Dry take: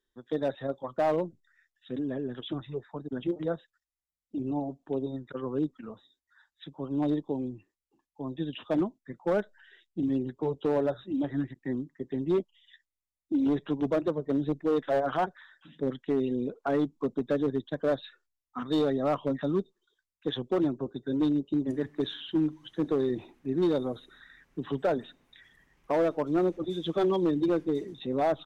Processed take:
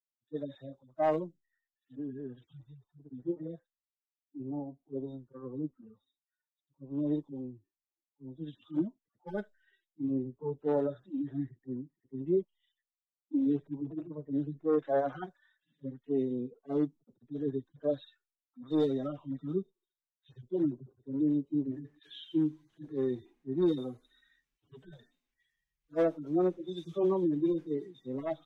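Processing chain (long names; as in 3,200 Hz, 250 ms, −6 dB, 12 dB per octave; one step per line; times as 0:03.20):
harmonic-percussive split with one part muted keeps harmonic
multiband upward and downward expander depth 70%
level −4 dB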